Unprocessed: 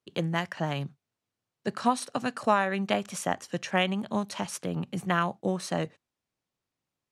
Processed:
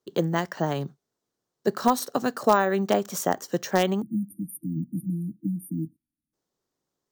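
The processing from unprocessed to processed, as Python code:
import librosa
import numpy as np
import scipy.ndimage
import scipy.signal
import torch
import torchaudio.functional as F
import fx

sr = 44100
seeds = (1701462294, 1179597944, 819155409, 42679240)

p1 = fx.spec_erase(x, sr, start_s=4.02, length_s=2.31, low_hz=340.0, high_hz=9000.0)
p2 = (np.mod(10.0 ** (11.5 / 20.0) * p1 + 1.0, 2.0) - 1.0) / 10.0 ** (11.5 / 20.0)
p3 = p1 + (p2 * librosa.db_to_amplitude(-11.5))
p4 = fx.graphic_eq_15(p3, sr, hz=(100, 400, 2500, 6300), db=(-8, 7, -10, 4))
p5 = np.repeat(scipy.signal.resample_poly(p4, 1, 2), 2)[:len(p4)]
y = p5 * librosa.db_to_amplitude(1.5)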